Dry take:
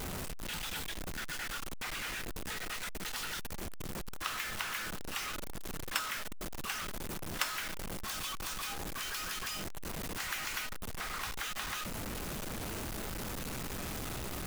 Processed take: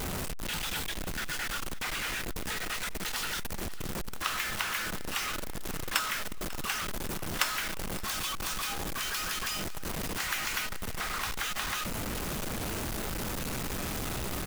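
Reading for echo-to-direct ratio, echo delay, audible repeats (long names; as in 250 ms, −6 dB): −17.0 dB, 545 ms, 2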